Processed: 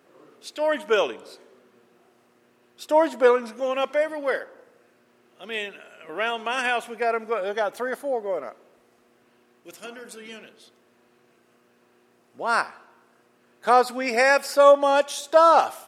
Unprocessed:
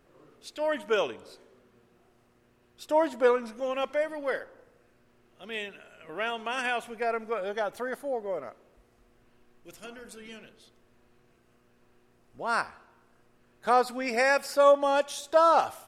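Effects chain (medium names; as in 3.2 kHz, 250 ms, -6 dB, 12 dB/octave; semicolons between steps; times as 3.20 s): high-pass 220 Hz 12 dB/octave; trim +5.5 dB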